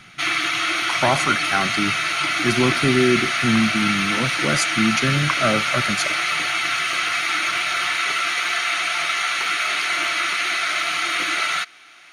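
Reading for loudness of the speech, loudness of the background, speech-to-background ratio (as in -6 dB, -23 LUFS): -22.5 LUFS, -20.0 LUFS, -2.5 dB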